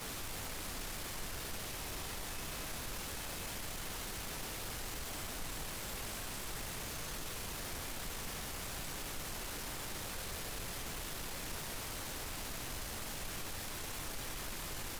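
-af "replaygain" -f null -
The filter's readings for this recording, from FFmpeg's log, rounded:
track_gain = +27.5 dB
track_peak = 0.022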